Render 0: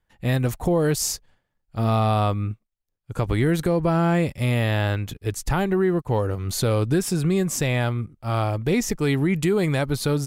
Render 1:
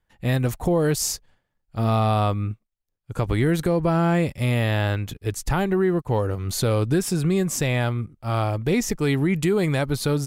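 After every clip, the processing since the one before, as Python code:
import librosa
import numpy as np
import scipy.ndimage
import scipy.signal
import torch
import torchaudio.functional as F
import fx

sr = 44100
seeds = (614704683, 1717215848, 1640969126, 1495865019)

y = x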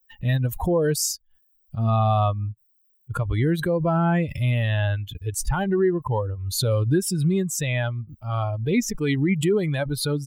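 y = fx.bin_expand(x, sr, power=2.0)
y = fx.pre_swell(y, sr, db_per_s=72.0)
y = y * 10.0 ** (3.0 / 20.0)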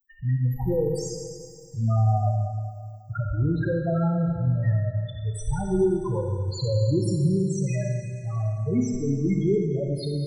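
y = fx.spec_topn(x, sr, count=4)
y = fx.echo_wet_highpass(y, sr, ms=110, feedback_pct=80, hz=1500.0, wet_db=-16.5)
y = fx.rev_schroeder(y, sr, rt60_s=2.0, comb_ms=28, drr_db=1.5)
y = y * 10.0 ** (-2.5 / 20.0)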